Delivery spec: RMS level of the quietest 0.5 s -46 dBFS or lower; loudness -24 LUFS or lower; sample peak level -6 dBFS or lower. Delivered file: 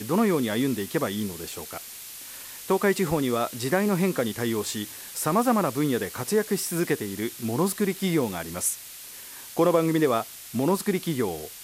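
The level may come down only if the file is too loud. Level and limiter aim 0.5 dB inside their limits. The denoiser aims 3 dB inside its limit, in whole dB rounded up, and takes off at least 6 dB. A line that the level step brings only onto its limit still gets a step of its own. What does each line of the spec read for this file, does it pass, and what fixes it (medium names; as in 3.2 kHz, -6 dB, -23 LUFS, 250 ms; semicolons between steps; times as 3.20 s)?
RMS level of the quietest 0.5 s -42 dBFS: fail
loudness -26.0 LUFS: pass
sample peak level -8.5 dBFS: pass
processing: noise reduction 7 dB, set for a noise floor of -42 dBFS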